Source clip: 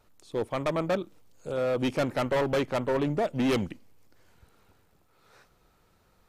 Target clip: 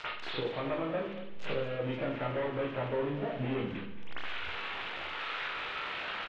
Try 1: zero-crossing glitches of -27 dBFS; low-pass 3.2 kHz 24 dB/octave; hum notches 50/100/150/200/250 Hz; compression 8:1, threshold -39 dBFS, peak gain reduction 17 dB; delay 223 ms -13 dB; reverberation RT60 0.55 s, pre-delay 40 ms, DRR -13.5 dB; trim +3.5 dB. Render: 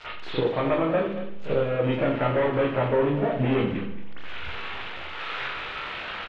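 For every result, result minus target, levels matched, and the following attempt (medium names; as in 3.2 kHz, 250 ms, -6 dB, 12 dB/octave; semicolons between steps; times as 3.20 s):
compression: peak gain reduction -10.5 dB; zero-crossing glitches: distortion -9 dB
zero-crossing glitches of -27 dBFS; low-pass 3.2 kHz 24 dB/octave; hum notches 50/100/150/200/250 Hz; compression 8:1, threshold -51 dBFS, peak gain reduction 27.5 dB; delay 223 ms -13 dB; reverberation RT60 0.55 s, pre-delay 40 ms, DRR -13.5 dB; trim +3.5 dB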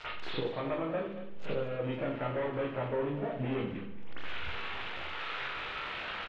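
zero-crossing glitches: distortion -9 dB
zero-crossing glitches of -18 dBFS; low-pass 3.2 kHz 24 dB/octave; hum notches 50/100/150/200/250 Hz; compression 8:1, threshold -51 dBFS, peak gain reduction 27.5 dB; delay 223 ms -13 dB; reverberation RT60 0.55 s, pre-delay 40 ms, DRR -13.5 dB; trim +3.5 dB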